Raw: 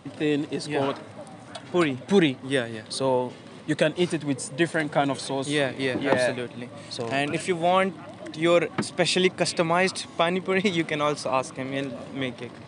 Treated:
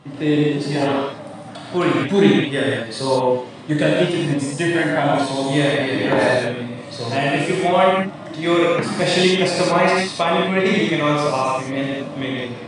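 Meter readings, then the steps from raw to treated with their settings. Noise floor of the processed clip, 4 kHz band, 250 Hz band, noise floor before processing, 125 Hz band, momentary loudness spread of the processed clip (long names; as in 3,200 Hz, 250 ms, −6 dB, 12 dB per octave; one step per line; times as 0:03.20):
−35 dBFS, +6.0 dB, +7.5 dB, −44 dBFS, +8.5 dB, 10 LU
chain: high-shelf EQ 8,000 Hz −9 dB
reverb whose tail is shaped and stops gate 230 ms flat, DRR −6 dB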